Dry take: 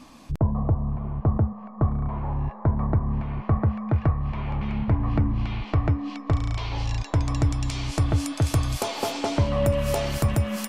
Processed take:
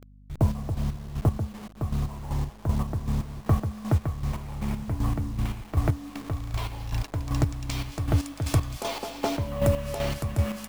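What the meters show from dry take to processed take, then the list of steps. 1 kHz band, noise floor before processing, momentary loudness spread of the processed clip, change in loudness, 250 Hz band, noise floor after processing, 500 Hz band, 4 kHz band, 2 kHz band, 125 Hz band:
-4.0 dB, -41 dBFS, 6 LU, -3.5 dB, -3.5 dB, -47 dBFS, -3.5 dB, -3.5 dB, -3.5 dB, -3.5 dB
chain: level-crossing sampler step -36 dBFS; chopper 2.6 Hz, depth 60%, duty 35%; hum 50 Hz, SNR 24 dB

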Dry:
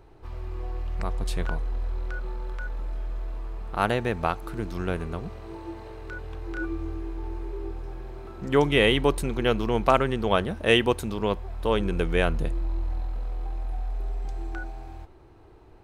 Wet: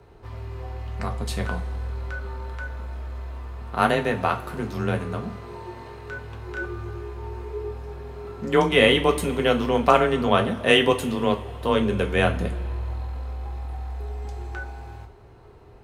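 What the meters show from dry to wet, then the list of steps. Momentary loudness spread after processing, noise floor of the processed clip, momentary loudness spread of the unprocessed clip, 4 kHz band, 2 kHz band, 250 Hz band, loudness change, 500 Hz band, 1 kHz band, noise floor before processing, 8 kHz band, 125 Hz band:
19 LU, -48 dBFS, 17 LU, +4.0 dB, +4.0 dB, +3.0 dB, +3.5 dB, +3.5 dB, +4.0 dB, -51 dBFS, +4.0 dB, +2.0 dB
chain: frequency shift +23 Hz; two-slope reverb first 0.25 s, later 2.2 s, from -20 dB, DRR 3 dB; gain +2 dB

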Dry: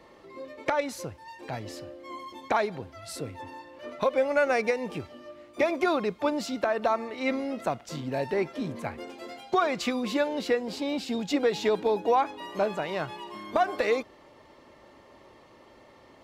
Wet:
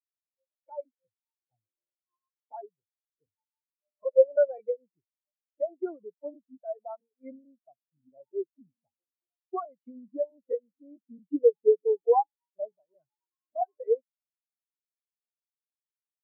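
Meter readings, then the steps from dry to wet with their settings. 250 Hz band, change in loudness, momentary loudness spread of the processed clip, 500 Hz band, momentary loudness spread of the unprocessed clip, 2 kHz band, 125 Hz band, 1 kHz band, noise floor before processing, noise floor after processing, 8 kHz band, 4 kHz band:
-11.5 dB, 0.0 dB, 20 LU, -0.5 dB, 16 LU, under -20 dB, under -30 dB, -6.0 dB, -55 dBFS, under -85 dBFS, under -35 dB, under -40 dB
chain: crackling interface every 0.22 s, samples 512, repeat, from 0.61; spectral expander 4:1

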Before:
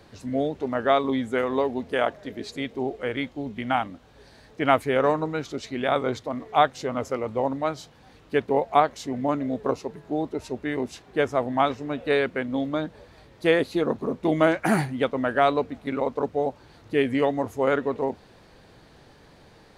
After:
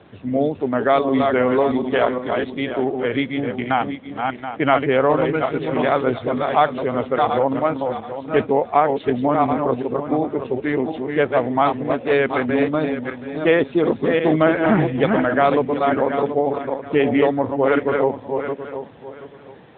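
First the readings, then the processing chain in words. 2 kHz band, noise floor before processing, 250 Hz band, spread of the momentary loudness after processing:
+5.5 dB, -53 dBFS, +7.0 dB, 8 LU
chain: regenerating reverse delay 0.364 s, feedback 47%, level -5 dB; in parallel at +0.5 dB: limiter -14 dBFS, peak gain reduction 9.5 dB; on the sum: bit-crush 11-bit; added harmonics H 4 -41 dB, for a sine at -1.5 dBFS; AMR-NB 10.2 kbps 8000 Hz

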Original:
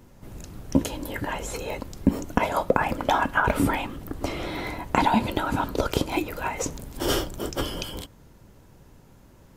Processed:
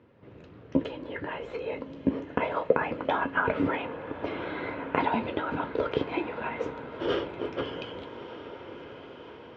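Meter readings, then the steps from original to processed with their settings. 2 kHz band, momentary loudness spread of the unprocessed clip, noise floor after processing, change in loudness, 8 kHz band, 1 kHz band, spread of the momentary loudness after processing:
-3.5 dB, 12 LU, -49 dBFS, -4.5 dB, under -30 dB, -5.5 dB, 16 LU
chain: flange 0.24 Hz, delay 9.2 ms, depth 5.5 ms, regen -54%; speaker cabinet 130–3100 Hz, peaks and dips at 200 Hz -6 dB, 460 Hz +7 dB, 800 Hz -5 dB; on a send: diffused feedback echo 1.244 s, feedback 58%, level -12 dB

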